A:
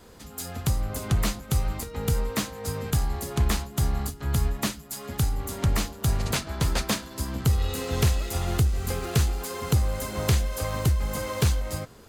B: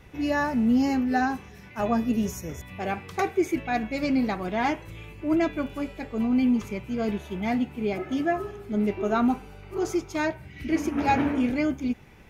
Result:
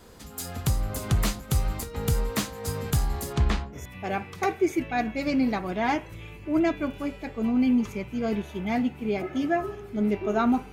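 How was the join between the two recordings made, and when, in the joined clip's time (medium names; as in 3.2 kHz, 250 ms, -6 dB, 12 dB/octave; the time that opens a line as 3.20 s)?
A
3.32–3.78 s: low-pass 7.1 kHz -> 1.6 kHz
3.75 s: go over to B from 2.51 s, crossfade 0.06 s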